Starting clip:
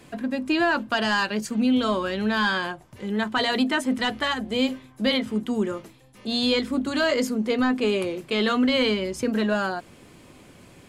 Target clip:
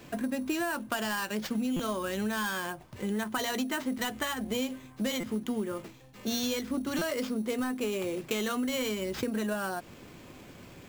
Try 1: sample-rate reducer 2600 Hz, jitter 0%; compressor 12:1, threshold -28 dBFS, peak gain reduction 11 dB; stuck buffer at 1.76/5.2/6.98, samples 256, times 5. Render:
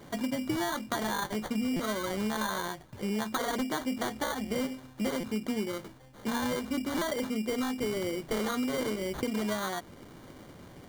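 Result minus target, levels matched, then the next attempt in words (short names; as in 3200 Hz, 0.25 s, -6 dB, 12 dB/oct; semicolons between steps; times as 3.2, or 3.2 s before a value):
sample-rate reducer: distortion +8 dB
sample-rate reducer 10000 Hz, jitter 0%; compressor 12:1, threshold -28 dBFS, peak gain reduction 11 dB; stuck buffer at 1.76/5.2/6.98, samples 256, times 5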